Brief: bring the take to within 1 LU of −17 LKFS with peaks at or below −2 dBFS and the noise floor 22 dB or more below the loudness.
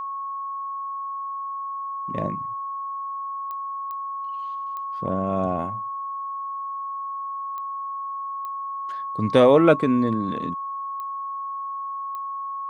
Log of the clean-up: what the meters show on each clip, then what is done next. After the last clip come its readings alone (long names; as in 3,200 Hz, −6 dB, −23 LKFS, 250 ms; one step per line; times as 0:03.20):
number of clicks 7; interfering tone 1,100 Hz; level of the tone −28 dBFS; integrated loudness −26.0 LKFS; sample peak −4.0 dBFS; target loudness −17.0 LKFS
→ click removal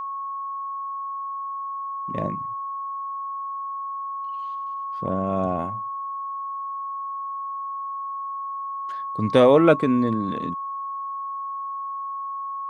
number of clicks 0; interfering tone 1,100 Hz; level of the tone −28 dBFS
→ notch filter 1,100 Hz, Q 30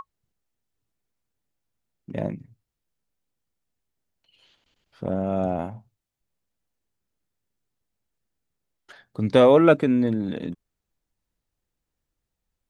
interfering tone none found; integrated loudness −21.5 LKFS; sample peak −4.5 dBFS; target loudness −17.0 LKFS
→ level +4.5 dB
brickwall limiter −2 dBFS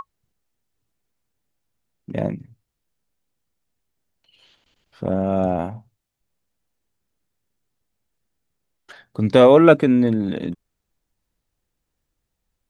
integrated loudness −17.5 LKFS; sample peak −2.0 dBFS; background noise floor −79 dBFS